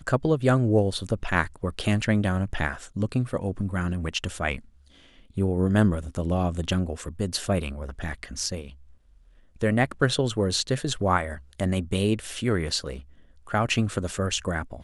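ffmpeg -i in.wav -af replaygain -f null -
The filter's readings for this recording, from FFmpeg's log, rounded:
track_gain = +6.7 dB
track_peak = 0.384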